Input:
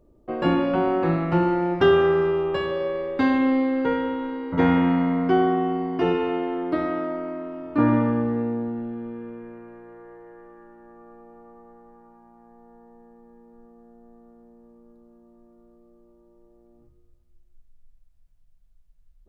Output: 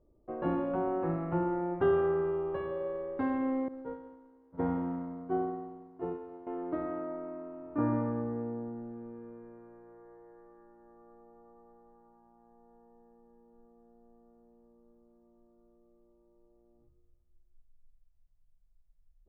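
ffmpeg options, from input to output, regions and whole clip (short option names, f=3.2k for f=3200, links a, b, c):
-filter_complex "[0:a]asettb=1/sr,asplit=3[a][b][c];[a]atrim=end=3.684[d];[b]atrim=start=3.68:end=6.47,asetpts=PTS-STARTPTS,afade=t=in:d=0.004:c=qsin,afade=t=out:st=2.786:d=0.004:c=qsin,aeval=exprs='val(0)+0.5*0.0251*sgn(val(0))':c=same,agate=range=-33dB:threshold=-15dB:ratio=3:release=100:detection=peak,equalizer=f=2.5k:t=o:w=1.4:g=-8[e];[c]atrim=start=6.466[f];[d][e]acrossfade=d=0.004:c1=hsin:c2=qsin[g];[g][f]acrossfade=d=0.004:c1=qsin:c2=hsin,lowpass=1.2k,equalizer=f=220:w=1.4:g=-3.5,volume=-8.5dB"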